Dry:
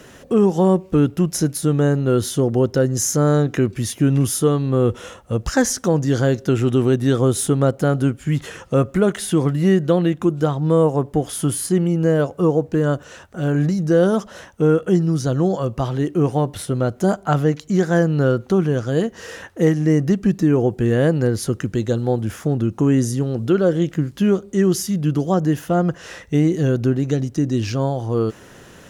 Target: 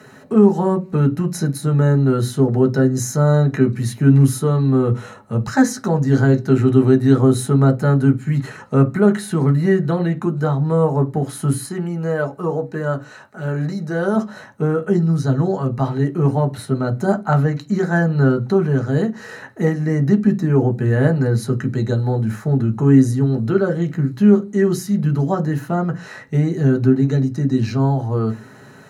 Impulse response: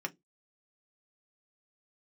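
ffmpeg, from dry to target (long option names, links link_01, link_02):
-filter_complex "[0:a]asettb=1/sr,asplit=3[link_01][link_02][link_03];[link_01]atrim=end=11.644[link_04];[link_02]atrim=start=11.64:end=14.16,asetpts=PTS-STARTPTS,afade=type=in:duration=0.004:curve=qsin,afade=type=out:start_time=2.516:duration=0.004:curve=qsin,lowshelf=frequency=260:gain=-8.5[link_05];[link_03]atrim=start=14.156[link_06];[link_04][link_05]acrossfade=duration=0.004:curve1=hsin:curve2=qsin[link_07];[link_07][link_06]acrossfade=duration=0.004:curve1=qsin:curve2=hsin[link_08];[1:a]atrim=start_sample=2205,asetrate=31752,aresample=44100[link_09];[link_08][link_09]afir=irnorm=-1:irlink=0,volume=-3.5dB"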